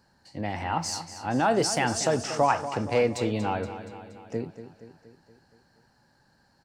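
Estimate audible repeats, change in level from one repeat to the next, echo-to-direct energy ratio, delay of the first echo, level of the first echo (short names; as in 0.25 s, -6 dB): 5, -5.0 dB, -10.5 dB, 0.236 s, -12.0 dB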